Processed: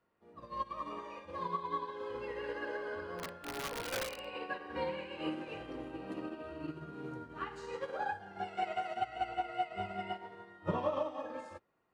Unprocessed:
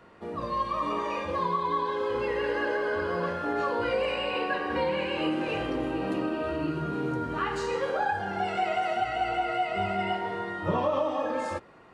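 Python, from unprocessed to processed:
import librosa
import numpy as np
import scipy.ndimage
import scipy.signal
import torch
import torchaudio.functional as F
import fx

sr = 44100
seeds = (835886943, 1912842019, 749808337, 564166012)

y = fx.overflow_wrap(x, sr, gain_db=21.5, at=(3.18, 4.23), fade=0.02)
y = fx.upward_expand(y, sr, threshold_db=-37.0, expansion=2.5)
y = y * librosa.db_to_amplitude(-4.5)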